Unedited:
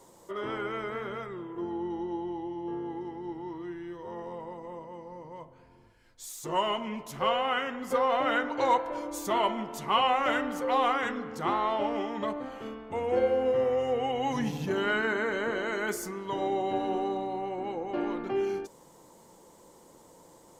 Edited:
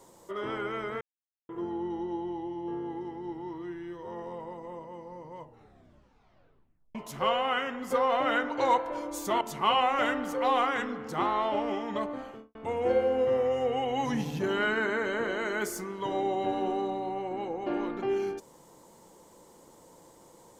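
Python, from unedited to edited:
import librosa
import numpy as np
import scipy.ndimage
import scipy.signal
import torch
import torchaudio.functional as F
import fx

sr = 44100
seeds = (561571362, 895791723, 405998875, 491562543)

y = fx.studio_fade_out(x, sr, start_s=12.47, length_s=0.35)
y = fx.edit(y, sr, fx.silence(start_s=1.01, length_s=0.48),
    fx.tape_stop(start_s=5.39, length_s=1.56),
    fx.cut(start_s=9.41, length_s=0.27), tone=tone)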